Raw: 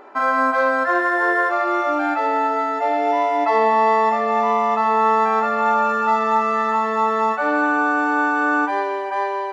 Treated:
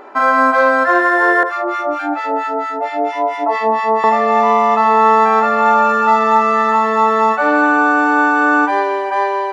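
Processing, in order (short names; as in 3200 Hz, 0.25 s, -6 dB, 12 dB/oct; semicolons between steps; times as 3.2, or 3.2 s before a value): 1.43–4.04 harmonic tremolo 4.4 Hz, depth 100%, crossover 1100 Hz; gain +6 dB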